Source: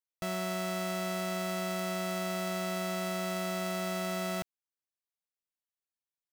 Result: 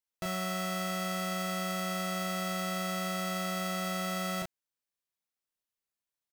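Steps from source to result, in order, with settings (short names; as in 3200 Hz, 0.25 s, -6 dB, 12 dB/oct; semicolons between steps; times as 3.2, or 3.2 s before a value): doubler 34 ms -2.5 dB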